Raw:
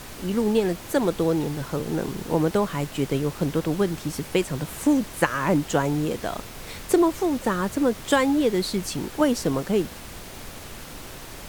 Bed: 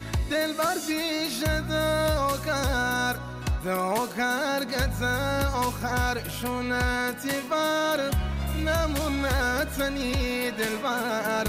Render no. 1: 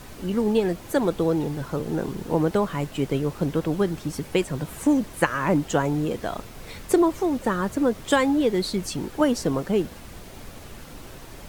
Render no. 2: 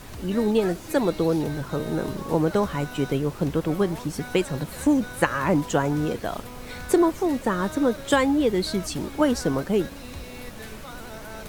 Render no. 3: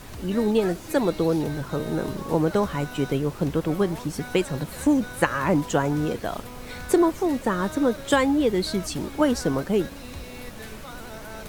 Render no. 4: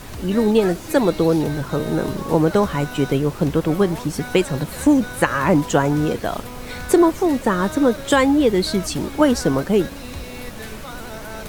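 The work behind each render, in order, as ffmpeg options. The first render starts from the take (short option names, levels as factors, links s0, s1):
-af "afftdn=nr=6:nf=-40"
-filter_complex "[1:a]volume=0.2[s0];[0:a][s0]amix=inputs=2:normalize=0"
-af anull
-af "volume=1.88,alimiter=limit=0.794:level=0:latency=1"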